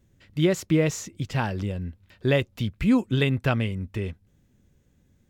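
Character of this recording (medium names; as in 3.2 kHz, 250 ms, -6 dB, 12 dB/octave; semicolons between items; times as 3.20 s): noise floor -64 dBFS; spectral tilt -6.0 dB/octave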